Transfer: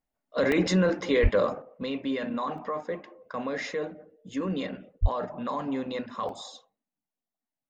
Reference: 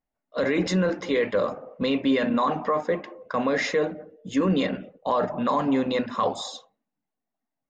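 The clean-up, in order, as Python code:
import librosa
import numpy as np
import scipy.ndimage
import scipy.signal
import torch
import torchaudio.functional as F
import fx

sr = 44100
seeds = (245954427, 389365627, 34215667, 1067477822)

y = fx.highpass(x, sr, hz=140.0, slope=24, at=(1.22, 1.34), fade=0.02)
y = fx.highpass(y, sr, hz=140.0, slope=24, at=(5.01, 5.13), fade=0.02)
y = fx.fix_interpolate(y, sr, at_s=(0.52, 2.58, 6.29), length_ms=1.4)
y = fx.gain(y, sr, db=fx.steps((0.0, 0.0), (1.62, 8.0)))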